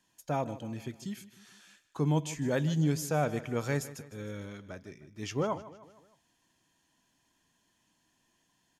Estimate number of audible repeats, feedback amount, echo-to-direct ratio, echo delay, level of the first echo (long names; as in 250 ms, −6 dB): 4, 50%, −15.5 dB, 154 ms, −16.5 dB